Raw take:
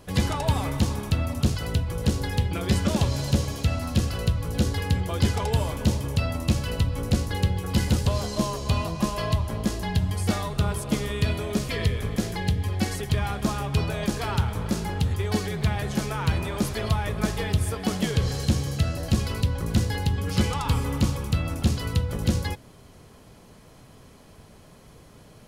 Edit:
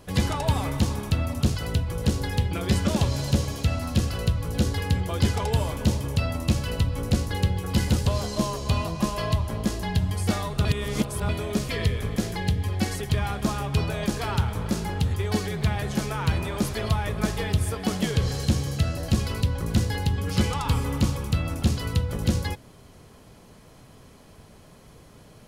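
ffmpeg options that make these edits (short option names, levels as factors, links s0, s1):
-filter_complex "[0:a]asplit=3[s0][s1][s2];[s0]atrim=end=10.652[s3];[s1]atrim=start=10.648:end=11.292,asetpts=PTS-STARTPTS,areverse[s4];[s2]atrim=start=11.288[s5];[s3][s4]acrossfade=d=0.004:c1=hsin:c2=hsin[s6];[s6][s5]acrossfade=d=0.004:c1=hsin:c2=hsin"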